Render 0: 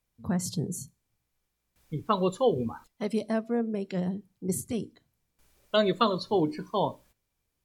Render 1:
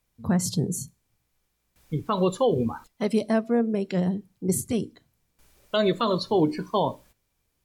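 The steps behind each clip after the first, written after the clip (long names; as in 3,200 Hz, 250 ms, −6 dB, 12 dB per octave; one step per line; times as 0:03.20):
brickwall limiter −18.5 dBFS, peak gain reduction 8.5 dB
level +5.5 dB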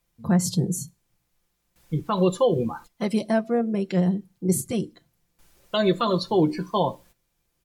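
comb filter 5.8 ms, depth 51%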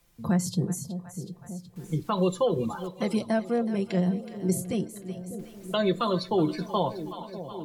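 echo with a time of its own for lows and highs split 650 Hz, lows 599 ms, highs 372 ms, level −15 dB
multiband upward and downward compressor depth 40%
level −3.5 dB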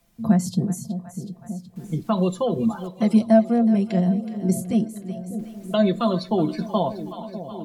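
hollow resonant body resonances 220/670 Hz, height 12 dB, ringing for 65 ms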